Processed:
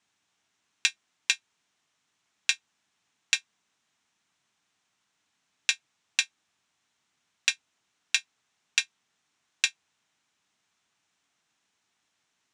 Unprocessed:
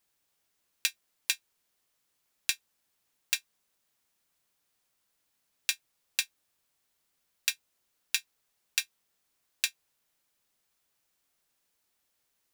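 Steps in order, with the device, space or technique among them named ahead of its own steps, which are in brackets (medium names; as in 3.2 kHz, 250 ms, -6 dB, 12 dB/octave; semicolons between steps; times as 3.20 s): car door speaker (cabinet simulation 110–7000 Hz, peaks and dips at 370 Hz -4 dB, 530 Hz -10 dB, 4.7 kHz -6 dB); trim +6.5 dB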